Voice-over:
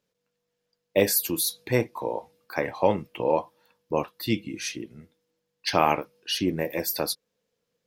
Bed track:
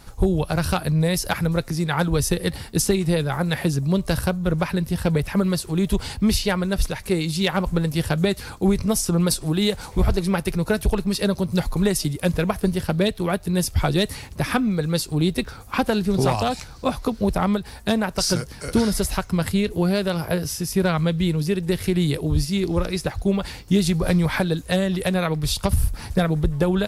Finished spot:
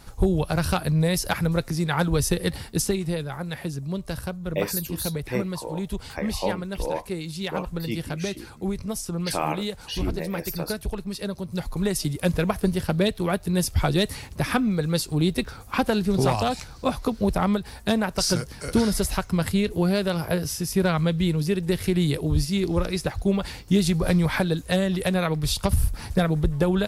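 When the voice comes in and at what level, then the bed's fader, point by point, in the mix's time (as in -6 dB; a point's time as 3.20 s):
3.60 s, -5.5 dB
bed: 2.58 s -1.5 dB
3.37 s -9 dB
11.45 s -9 dB
12.15 s -1.5 dB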